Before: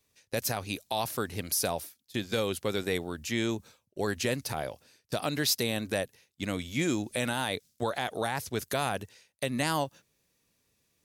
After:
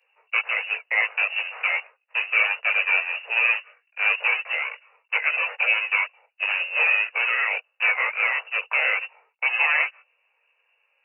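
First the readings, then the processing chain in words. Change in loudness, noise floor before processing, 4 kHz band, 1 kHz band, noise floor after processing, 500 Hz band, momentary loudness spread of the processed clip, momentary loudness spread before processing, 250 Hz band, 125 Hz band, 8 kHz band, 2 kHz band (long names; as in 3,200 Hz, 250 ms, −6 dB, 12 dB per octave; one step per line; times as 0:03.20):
+10.0 dB, −75 dBFS, +2.5 dB, +3.0 dB, −71 dBFS, −6.5 dB, 8 LU, 8 LU, below −40 dB, below −40 dB, below −40 dB, +17.0 dB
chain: each half-wave held at its own peak
voice inversion scrambler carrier 2,800 Hz
multi-voice chorus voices 4, 0.46 Hz, delay 19 ms, depth 2 ms
Butterworth high-pass 450 Hz 96 dB per octave
level +6.5 dB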